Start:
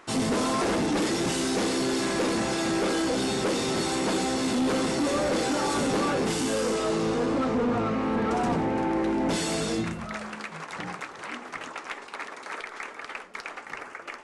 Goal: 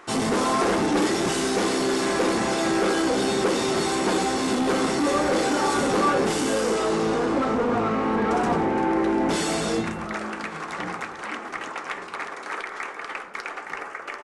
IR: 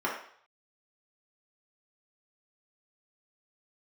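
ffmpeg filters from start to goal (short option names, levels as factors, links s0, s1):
-filter_complex "[0:a]asplit=2[s0][s1];[s1]adelay=1144,lowpass=f=2000:p=1,volume=0.15,asplit=2[s2][s3];[s3]adelay=1144,lowpass=f=2000:p=1,volume=0.34,asplit=2[s4][s5];[s5]adelay=1144,lowpass=f=2000:p=1,volume=0.34[s6];[s0][s2][s4][s6]amix=inputs=4:normalize=0,asplit=2[s7][s8];[1:a]atrim=start_sample=2205,lowpass=3700[s9];[s8][s9]afir=irnorm=-1:irlink=0,volume=0.188[s10];[s7][s10]amix=inputs=2:normalize=0,acontrast=45,volume=0.668"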